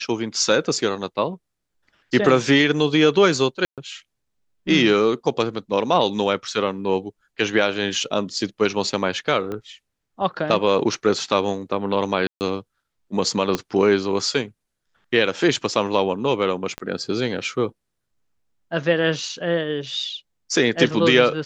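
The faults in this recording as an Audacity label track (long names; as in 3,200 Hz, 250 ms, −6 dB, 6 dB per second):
3.650000	3.780000	drop-out 127 ms
9.520000	9.520000	click −18 dBFS
12.270000	12.410000	drop-out 139 ms
13.550000	13.550000	click −7 dBFS
16.780000	16.780000	click −15 dBFS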